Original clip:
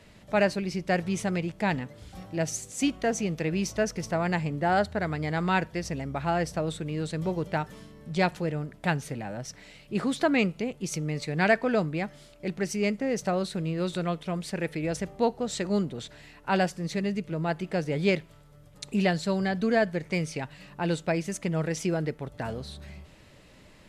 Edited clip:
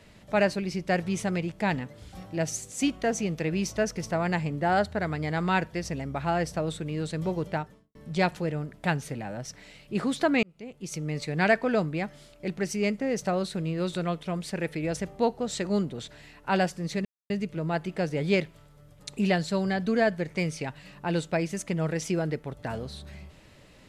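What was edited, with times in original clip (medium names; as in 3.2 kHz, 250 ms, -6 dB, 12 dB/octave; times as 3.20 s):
7.45–7.95 s: studio fade out
10.43–11.16 s: fade in
17.05 s: insert silence 0.25 s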